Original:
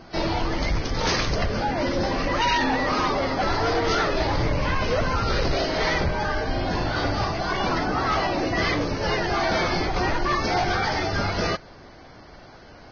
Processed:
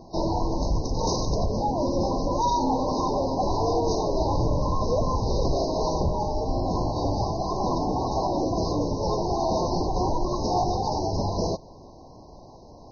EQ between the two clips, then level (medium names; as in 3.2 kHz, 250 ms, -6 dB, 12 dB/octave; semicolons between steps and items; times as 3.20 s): brick-wall FIR band-stop 1.1–3.7 kHz; high-order bell 3.3 kHz -8.5 dB 1.2 oct; 0.0 dB